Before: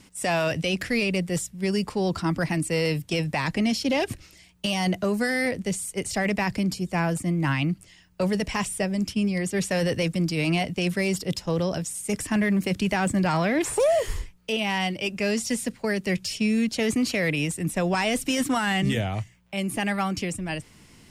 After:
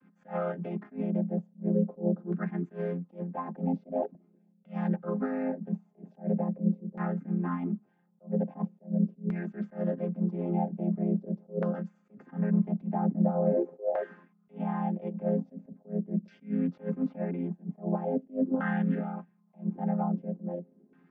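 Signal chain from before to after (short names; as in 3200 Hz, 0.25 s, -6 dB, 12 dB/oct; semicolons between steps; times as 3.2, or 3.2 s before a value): chord vocoder minor triad, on F3; LFO low-pass saw down 0.43 Hz 460–1600 Hz; flange 0.23 Hz, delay 0.7 ms, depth 5.3 ms, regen -60%; attack slew limiter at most 260 dB/s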